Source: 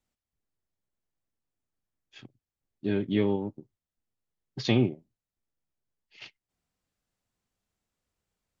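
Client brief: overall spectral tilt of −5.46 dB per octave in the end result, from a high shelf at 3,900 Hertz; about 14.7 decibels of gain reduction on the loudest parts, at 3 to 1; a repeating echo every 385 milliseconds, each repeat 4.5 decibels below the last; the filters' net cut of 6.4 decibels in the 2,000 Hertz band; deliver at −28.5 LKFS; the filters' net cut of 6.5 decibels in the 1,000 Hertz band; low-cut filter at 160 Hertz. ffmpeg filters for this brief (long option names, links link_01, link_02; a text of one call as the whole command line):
ffmpeg -i in.wav -af "highpass=160,equalizer=frequency=1000:width_type=o:gain=-8,equalizer=frequency=2000:width_type=o:gain=-4.5,highshelf=frequency=3900:gain=-6,acompressor=threshold=-42dB:ratio=3,aecho=1:1:385|770|1155|1540|1925|2310|2695|3080|3465:0.596|0.357|0.214|0.129|0.0772|0.0463|0.0278|0.0167|0.01,volume=17.5dB" out.wav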